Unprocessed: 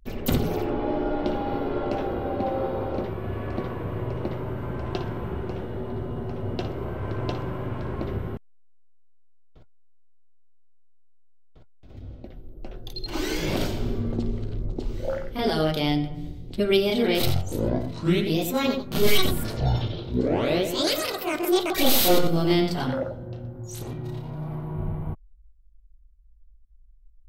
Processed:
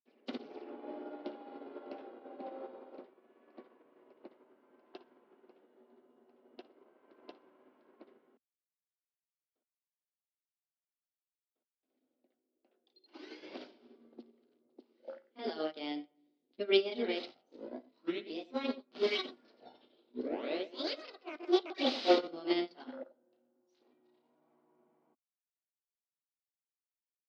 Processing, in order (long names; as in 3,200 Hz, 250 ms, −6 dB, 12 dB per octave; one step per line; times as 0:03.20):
Chebyshev band-pass filter 250–5,000 Hz, order 4
expander for the loud parts 2.5 to 1, over −36 dBFS
level −3 dB